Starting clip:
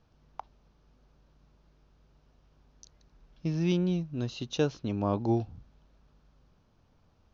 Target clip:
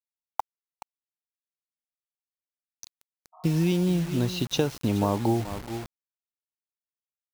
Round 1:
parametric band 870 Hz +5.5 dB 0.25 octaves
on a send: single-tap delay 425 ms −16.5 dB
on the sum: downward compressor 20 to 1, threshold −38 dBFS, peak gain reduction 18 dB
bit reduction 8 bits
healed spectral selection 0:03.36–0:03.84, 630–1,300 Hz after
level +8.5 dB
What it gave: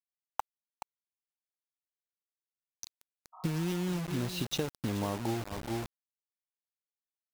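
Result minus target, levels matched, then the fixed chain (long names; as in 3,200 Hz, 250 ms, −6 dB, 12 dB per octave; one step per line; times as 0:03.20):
downward compressor: peak gain reduction +9.5 dB
parametric band 870 Hz +5.5 dB 0.25 octaves
on a send: single-tap delay 425 ms −16.5 dB
on the sum: downward compressor 20 to 1, threshold −28 dBFS, peak gain reduction 8.5 dB
bit reduction 8 bits
healed spectral selection 0:03.36–0:03.84, 630–1,300 Hz after
level +8.5 dB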